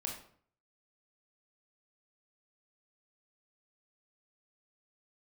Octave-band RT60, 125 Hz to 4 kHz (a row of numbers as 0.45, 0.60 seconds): 0.70, 0.60, 0.55, 0.55, 0.45, 0.40 seconds